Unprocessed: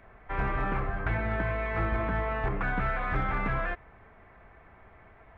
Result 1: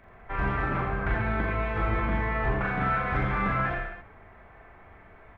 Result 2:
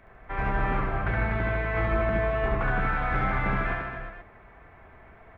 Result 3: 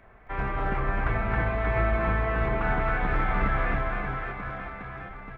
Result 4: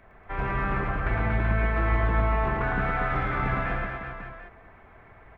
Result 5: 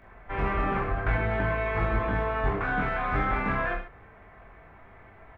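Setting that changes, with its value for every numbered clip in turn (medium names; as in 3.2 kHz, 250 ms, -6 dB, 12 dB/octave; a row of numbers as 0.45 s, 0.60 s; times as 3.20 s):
reverse bouncing-ball echo, first gap: 40 ms, 70 ms, 270 ms, 110 ms, 20 ms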